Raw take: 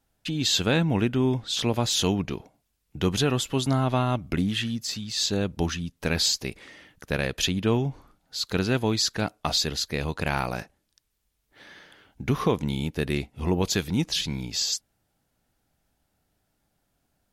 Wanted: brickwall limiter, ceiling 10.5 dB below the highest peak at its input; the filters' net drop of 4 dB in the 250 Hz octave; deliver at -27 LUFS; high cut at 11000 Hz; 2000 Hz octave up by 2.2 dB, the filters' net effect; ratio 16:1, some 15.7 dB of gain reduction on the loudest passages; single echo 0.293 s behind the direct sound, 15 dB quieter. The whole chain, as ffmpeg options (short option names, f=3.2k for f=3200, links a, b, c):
-af "lowpass=11k,equalizer=f=250:t=o:g=-5.5,equalizer=f=2k:t=o:g=3,acompressor=threshold=-36dB:ratio=16,alimiter=level_in=7dB:limit=-24dB:level=0:latency=1,volume=-7dB,aecho=1:1:293:0.178,volume=15dB"